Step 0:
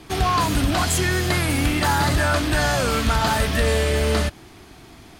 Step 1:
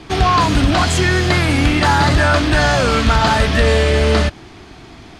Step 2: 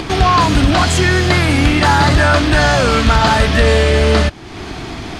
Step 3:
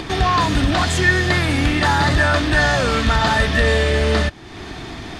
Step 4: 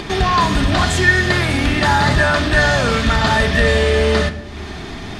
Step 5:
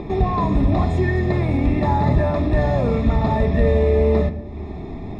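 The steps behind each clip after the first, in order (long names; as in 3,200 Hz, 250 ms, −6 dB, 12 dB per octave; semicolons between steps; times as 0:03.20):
low-pass filter 5,800 Hz 12 dB per octave; level +6.5 dB
upward compression, threshold −17 dBFS; level +2 dB
hollow resonant body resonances 1,800/3,600 Hz, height 10 dB, ringing for 45 ms; level −5.5 dB
convolution reverb RT60 0.85 s, pre-delay 5 ms, DRR 7 dB; level +1 dB
moving average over 29 samples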